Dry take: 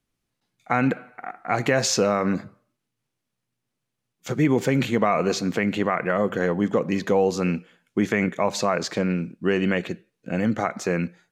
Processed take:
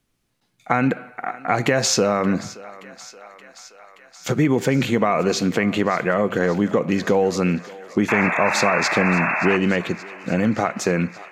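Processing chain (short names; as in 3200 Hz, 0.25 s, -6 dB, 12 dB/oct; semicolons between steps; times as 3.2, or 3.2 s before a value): compressor 2:1, threshold -26 dBFS, peak gain reduction 6.5 dB; painted sound noise, 8.08–9.57, 570–2700 Hz -30 dBFS; thinning echo 0.575 s, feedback 76%, high-pass 480 Hz, level -18 dB; gain +7.5 dB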